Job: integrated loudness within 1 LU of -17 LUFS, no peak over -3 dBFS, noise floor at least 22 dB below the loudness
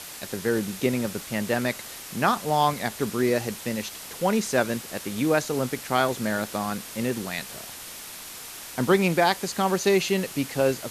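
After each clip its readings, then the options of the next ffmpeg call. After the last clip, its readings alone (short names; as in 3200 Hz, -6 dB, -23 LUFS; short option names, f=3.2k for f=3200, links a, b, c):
noise floor -40 dBFS; noise floor target -48 dBFS; loudness -25.5 LUFS; peak -7.5 dBFS; loudness target -17.0 LUFS
-> -af "afftdn=nr=8:nf=-40"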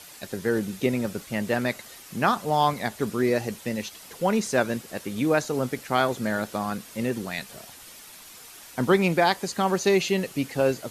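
noise floor -46 dBFS; noise floor target -48 dBFS
-> -af "afftdn=nr=6:nf=-46"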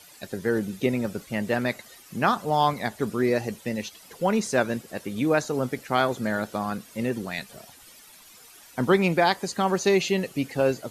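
noise floor -50 dBFS; loudness -26.0 LUFS; peak -7.5 dBFS; loudness target -17.0 LUFS
-> -af "volume=9dB,alimiter=limit=-3dB:level=0:latency=1"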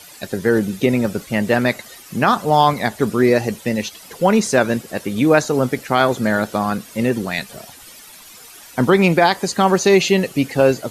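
loudness -17.5 LUFS; peak -3.0 dBFS; noise floor -41 dBFS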